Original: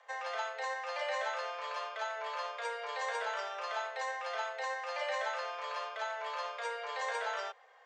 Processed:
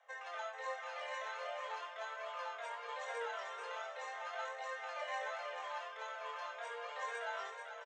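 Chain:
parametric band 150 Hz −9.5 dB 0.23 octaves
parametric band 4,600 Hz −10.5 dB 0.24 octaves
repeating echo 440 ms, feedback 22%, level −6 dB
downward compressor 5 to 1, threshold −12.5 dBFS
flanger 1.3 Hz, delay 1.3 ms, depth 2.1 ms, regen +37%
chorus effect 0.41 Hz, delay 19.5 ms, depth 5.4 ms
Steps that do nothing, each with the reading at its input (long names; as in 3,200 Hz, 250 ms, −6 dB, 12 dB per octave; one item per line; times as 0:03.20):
parametric band 150 Hz: nothing at its input below 380 Hz
downward compressor, threshold −12.5 dBFS: peak of its input −23.0 dBFS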